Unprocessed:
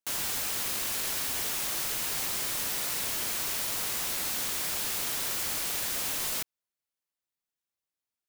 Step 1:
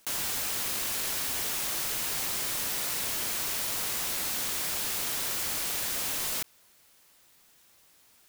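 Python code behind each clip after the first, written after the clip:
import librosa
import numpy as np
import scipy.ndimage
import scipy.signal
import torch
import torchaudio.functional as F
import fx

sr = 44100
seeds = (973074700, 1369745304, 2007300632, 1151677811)

y = fx.env_flatten(x, sr, amount_pct=50)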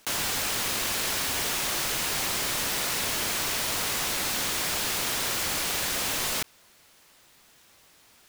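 y = fx.high_shelf(x, sr, hz=8100.0, db=-8.5)
y = F.gain(torch.from_numpy(y), 7.0).numpy()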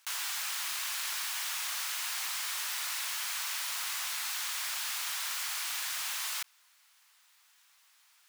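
y = scipy.signal.sosfilt(scipy.signal.butter(4, 950.0, 'highpass', fs=sr, output='sos'), x)
y = F.gain(torch.from_numpy(y), -6.5).numpy()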